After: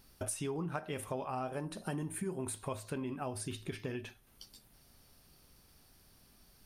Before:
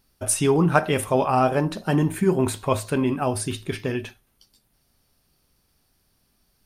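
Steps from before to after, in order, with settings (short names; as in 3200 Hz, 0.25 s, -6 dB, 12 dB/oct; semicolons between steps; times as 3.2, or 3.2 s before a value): 1.53–2.76 bell 9500 Hz +12 dB 0.43 oct; compressor 4:1, threshold -44 dBFS, peak gain reduction 25.5 dB; gain +3.5 dB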